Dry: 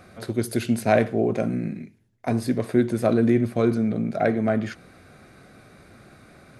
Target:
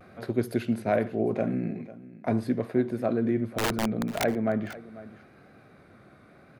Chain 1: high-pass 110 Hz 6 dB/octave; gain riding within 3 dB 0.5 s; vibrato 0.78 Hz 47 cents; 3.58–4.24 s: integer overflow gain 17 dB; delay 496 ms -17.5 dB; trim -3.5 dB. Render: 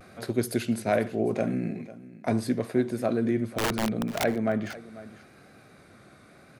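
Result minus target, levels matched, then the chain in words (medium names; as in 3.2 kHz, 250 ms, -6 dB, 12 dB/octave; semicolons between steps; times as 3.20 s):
8 kHz band +3.0 dB
high-pass 110 Hz 6 dB/octave; peaking EQ 7.8 kHz -14 dB 1.9 oct; gain riding within 3 dB 0.5 s; vibrato 0.78 Hz 47 cents; 3.58–4.24 s: integer overflow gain 17 dB; delay 496 ms -17.5 dB; trim -3.5 dB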